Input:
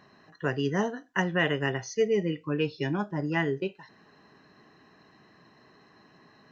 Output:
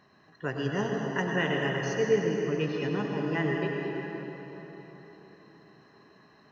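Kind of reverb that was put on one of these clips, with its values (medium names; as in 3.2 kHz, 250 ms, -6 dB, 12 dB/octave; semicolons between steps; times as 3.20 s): plate-style reverb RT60 4.3 s, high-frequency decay 0.65×, pre-delay 80 ms, DRR -0.5 dB; trim -4 dB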